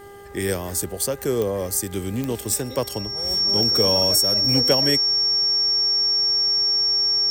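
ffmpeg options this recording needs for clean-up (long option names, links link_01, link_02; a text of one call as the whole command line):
ffmpeg -i in.wav -af "adeclick=threshold=4,bandreject=frequency=401.9:width_type=h:width=4,bandreject=frequency=803.8:width_type=h:width=4,bandreject=frequency=1205.7:width_type=h:width=4,bandreject=frequency=1607.6:width_type=h:width=4,bandreject=frequency=2009.5:width_type=h:width=4,bandreject=frequency=5500:width=30" out.wav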